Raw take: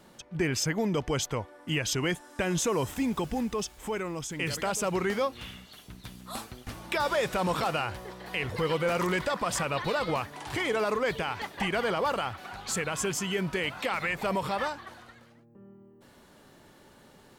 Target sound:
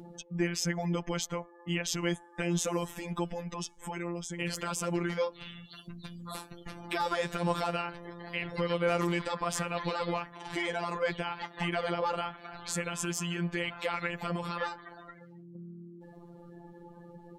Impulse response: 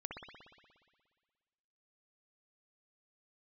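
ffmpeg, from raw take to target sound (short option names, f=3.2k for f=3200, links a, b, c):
-af "afftfilt=real='hypot(re,im)*cos(PI*b)':imag='0':win_size=1024:overlap=0.75,afftdn=nr=28:nf=-52,acompressor=mode=upward:threshold=-36dB:ratio=2.5"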